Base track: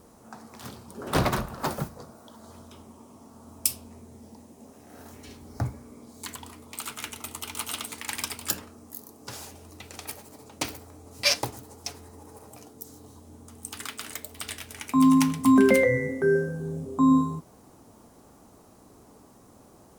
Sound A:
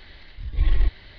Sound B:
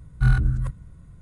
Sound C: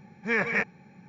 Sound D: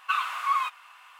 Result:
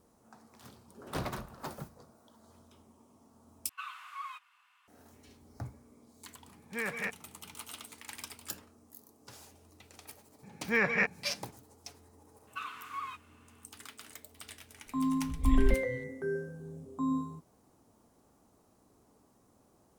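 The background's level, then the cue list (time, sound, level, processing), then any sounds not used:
base track -12.5 dB
3.69 s: replace with D -15 dB + high-pass 1 kHz
6.47 s: add C -10 dB
10.43 s: add C -2 dB
12.47 s: add D -13.5 dB + high-pass 830 Hz
14.86 s: add A -7 dB + spectral noise reduction 10 dB
not used: B

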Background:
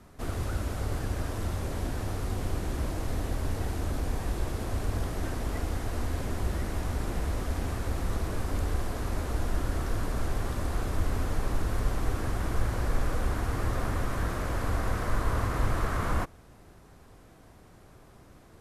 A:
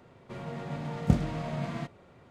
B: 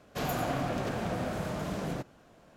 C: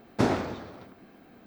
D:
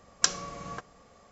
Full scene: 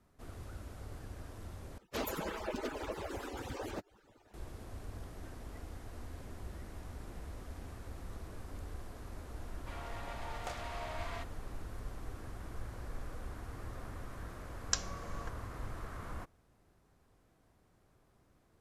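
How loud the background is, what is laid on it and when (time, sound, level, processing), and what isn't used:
background -15.5 dB
1.78 s: replace with B -1 dB + harmonic-percussive separation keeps percussive
9.37 s: add A -1.5 dB + high-pass 680 Hz 24 dB/octave
14.49 s: add D -9 dB
not used: C

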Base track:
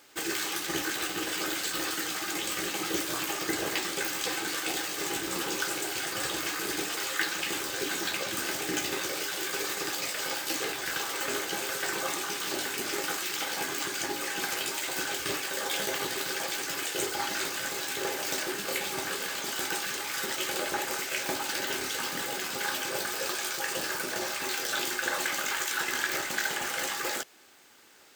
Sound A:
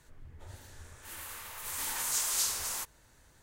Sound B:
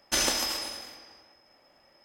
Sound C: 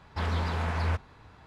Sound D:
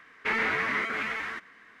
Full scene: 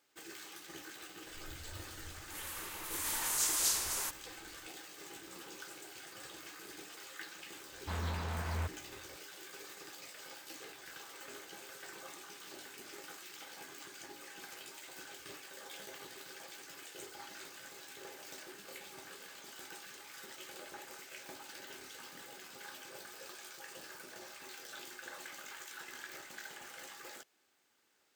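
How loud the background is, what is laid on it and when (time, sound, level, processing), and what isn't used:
base track -18 dB
1.26 s: add A -1 dB
7.71 s: add C -8.5 dB
not used: B, D

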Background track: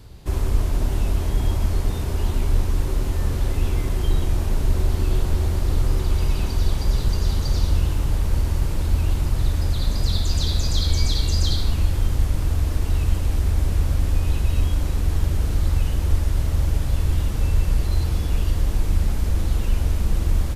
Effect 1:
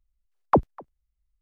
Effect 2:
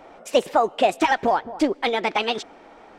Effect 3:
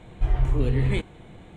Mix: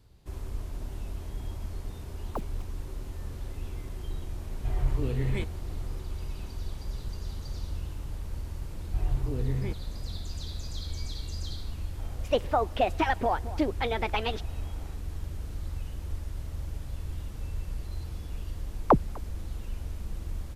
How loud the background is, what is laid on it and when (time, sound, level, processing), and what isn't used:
background track -15.5 dB
1.82 s: add 1 -17.5 dB + bit crusher 6-bit
4.43 s: add 3 -6.5 dB
8.72 s: add 3 -7.5 dB + low-pass 1.1 kHz 6 dB/octave
11.98 s: add 2 -7 dB + peaking EQ 8.5 kHz -13 dB 0.88 oct
18.37 s: add 1 -1.5 dB

